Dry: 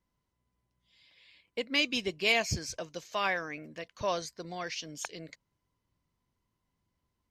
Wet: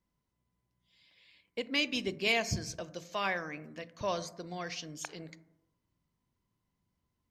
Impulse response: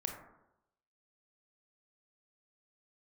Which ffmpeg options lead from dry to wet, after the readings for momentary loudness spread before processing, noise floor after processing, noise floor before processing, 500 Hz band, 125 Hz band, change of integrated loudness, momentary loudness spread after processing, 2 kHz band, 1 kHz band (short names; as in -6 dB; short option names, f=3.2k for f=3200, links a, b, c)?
15 LU, -83 dBFS, -83 dBFS, -2.0 dB, +0.5 dB, -2.5 dB, 14 LU, -2.5 dB, -2.5 dB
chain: -filter_complex "[0:a]asplit=2[a][b];[b]equalizer=f=180:t=o:w=2.2:g=11.5[c];[1:a]atrim=start_sample=2205[d];[c][d]afir=irnorm=-1:irlink=0,volume=-11.5dB[e];[a][e]amix=inputs=2:normalize=0,volume=-4.5dB"